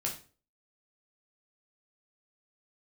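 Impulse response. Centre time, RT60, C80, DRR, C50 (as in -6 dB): 20 ms, 0.40 s, 14.0 dB, -1.5 dB, 9.0 dB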